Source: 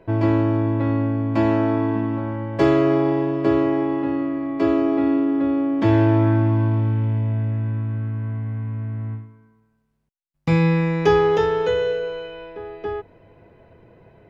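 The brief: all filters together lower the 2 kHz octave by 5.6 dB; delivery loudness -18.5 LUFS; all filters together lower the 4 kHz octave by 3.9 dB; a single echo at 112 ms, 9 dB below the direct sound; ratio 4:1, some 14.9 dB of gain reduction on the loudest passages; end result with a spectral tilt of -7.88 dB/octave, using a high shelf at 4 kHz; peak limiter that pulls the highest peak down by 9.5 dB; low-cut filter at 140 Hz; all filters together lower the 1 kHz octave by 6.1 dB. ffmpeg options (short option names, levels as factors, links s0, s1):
-af "highpass=140,equalizer=f=1000:t=o:g=-7,equalizer=f=2000:t=o:g=-4.5,highshelf=f=4000:g=5.5,equalizer=f=4000:t=o:g=-6,acompressor=threshold=0.0224:ratio=4,alimiter=level_in=2:limit=0.0631:level=0:latency=1,volume=0.501,aecho=1:1:112:0.355,volume=7.94"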